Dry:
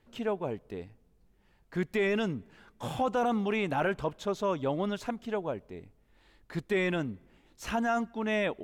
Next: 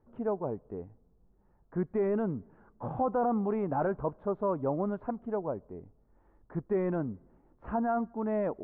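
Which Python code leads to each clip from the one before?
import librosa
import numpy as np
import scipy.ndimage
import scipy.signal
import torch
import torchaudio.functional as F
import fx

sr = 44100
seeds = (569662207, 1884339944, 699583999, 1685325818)

y = scipy.signal.sosfilt(scipy.signal.butter(4, 1200.0, 'lowpass', fs=sr, output='sos'), x)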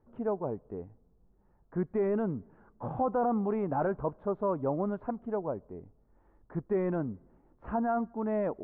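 y = x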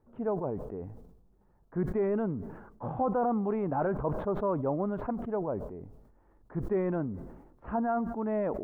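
y = fx.sustainer(x, sr, db_per_s=56.0)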